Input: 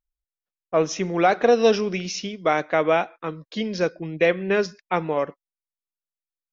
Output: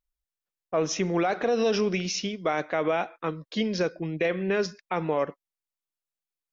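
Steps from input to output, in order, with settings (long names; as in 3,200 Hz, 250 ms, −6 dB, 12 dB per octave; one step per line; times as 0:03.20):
brickwall limiter −16 dBFS, peak gain reduction 9.5 dB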